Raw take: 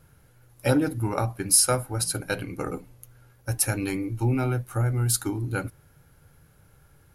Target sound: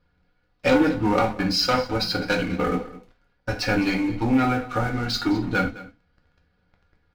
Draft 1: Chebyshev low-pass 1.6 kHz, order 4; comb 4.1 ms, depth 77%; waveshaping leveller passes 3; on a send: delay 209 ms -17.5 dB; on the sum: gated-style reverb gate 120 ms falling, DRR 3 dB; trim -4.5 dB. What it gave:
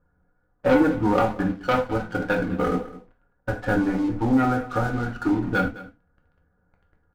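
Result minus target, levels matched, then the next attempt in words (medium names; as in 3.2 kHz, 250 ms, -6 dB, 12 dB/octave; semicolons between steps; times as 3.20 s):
4 kHz band -14.0 dB
Chebyshev low-pass 4.7 kHz, order 4; comb 4.1 ms, depth 77%; waveshaping leveller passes 3; on a send: delay 209 ms -17.5 dB; on the sum: gated-style reverb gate 120 ms falling, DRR 3 dB; trim -4.5 dB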